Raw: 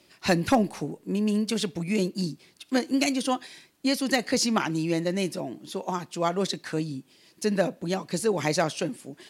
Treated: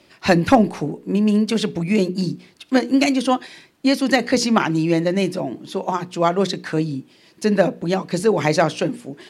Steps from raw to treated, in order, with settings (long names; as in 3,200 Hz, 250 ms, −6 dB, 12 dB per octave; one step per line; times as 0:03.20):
high-shelf EQ 5,000 Hz −11 dB
mains-hum notches 60/120/180/240/300/360/420/480 Hz
level +8.5 dB